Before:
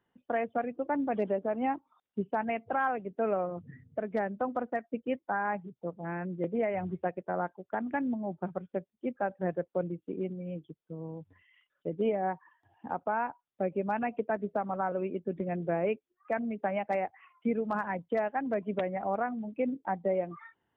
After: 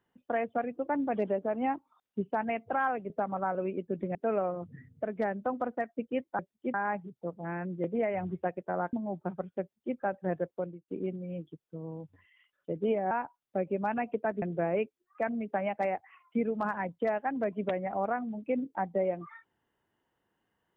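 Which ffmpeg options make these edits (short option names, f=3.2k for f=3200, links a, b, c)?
-filter_complex "[0:a]asplit=9[a][b][c][d][e][f][g][h][i];[a]atrim=end=3.102[j];[b]atrim=start=14.468:end=15.522[k];[c]atrim=start=3.098:end=5.342[l];[d]atrim=start=8.778:end=9.132[m];[e]atrim=start=5.338:end=7.532[n];[f]atrim=start=8.098:end=10.05,asetpts=PTS-STARTPTS,afade=t=out:st=1.562:d=0.39[o];[g]atrim=start=10.05:end=12.282,asetpts=PTS-STARTPTS,afade=t=in:d=0.004:c=hsin[p];[h]atrim=start=13.158:end=14.472[q];[i]atrim=start=15.518[r];[j][k]acrossfade=d=0.004:c1=hsin:c2=hsin[s];[s][l]acrossfade=d=0.004:c1=hsin:c2=hsin[t];[t][m]acrossfade=d=0.004:c1=hsin:c2=hsin[u];[u][n]acrossfade=d=0.004:c1=hsin:c2=hsin[v];[o][p]concat=n=2:v=0:a=1[w];[v][w]acrossfade=d=0.004:c1=hsin:c2=hsin[x];[x][q]acrossfade=d=0.004:c1=hsin:c2=hsin[y];[y][r]acrossfade=d=0.004:c1=hsin:c2=hsin"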